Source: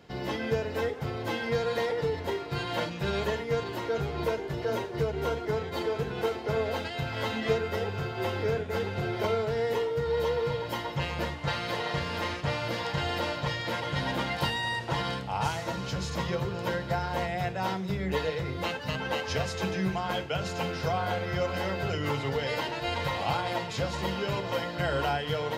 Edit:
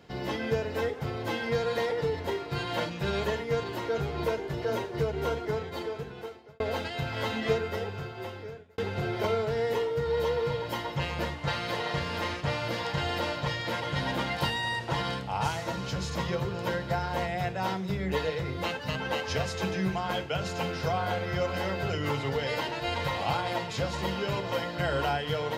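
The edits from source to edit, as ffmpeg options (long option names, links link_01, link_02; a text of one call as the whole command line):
ffmpeg -i in.wav -filter_complex "[0:a]asplit=3[link_01][link_02][link_03];[link_01]atrim=end=6.6,asetpts=PTS-STARTPTS,afade=type=out:start_time=5.38:duration=1.22[link_04];[link_02]atrim=start=6.6:end=8.78,asetpts=PTS-STARTPTS,afade=type=in:duration=0.004:curve=hsin,afade=type=out:start_time=0.91:duration=1.27[link_05];[link_03]atrim=start=8.78,asetpts=PTS-STARTPTS,afade=type=in:duration=0.004:curve=hsin[link_06];[link_04][link_05][link_06]concat=n=3:v=0:a=1" out.wav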